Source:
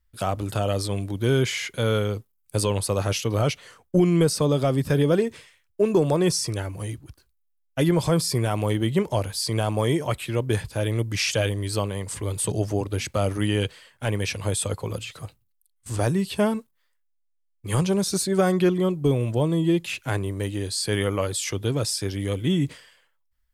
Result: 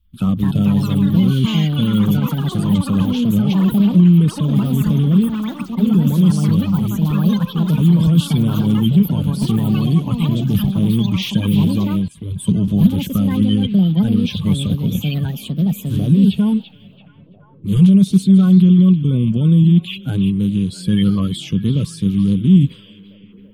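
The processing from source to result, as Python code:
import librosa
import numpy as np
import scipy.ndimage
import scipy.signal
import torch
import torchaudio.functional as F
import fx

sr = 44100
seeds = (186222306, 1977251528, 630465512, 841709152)

p1 = fx.spec_quant(x, sr, step_db=30)
p2 = fx.echo_pitch(p1, sr, ms=275, semitones=6, count=3, db_per_echo=-3.0)
p3 = fx.over_compress(p2, sr, threshold_db=-23.0, ratio=-0.5)
p4 = p2 + F.gain(torch.from_numpy(p3), 2.0).numpy()
p5 = fx.curve_eq(p4, sr, hz=(110.0, 190.0, 320.0, 710.0, 1100.0, 1900.0, 3300.0, 4900.0, 8100.0, 13000.0), db=(0, 10, -10, -22, -13, -20, -2, -20, -19, -11))
p6 = p5 + fx.echo_stepped(p5, sr, ms=336, hz=3100.0, octaves=-0.7, feedback_pct=70, wet_db=-9.5, dry=0)
p7 = fx.band_widen(p6, sr, depth_pct=100, at=(12.08, 12.68))
y = F.gain(torch.from_numpy(p7), 2.0).numpy()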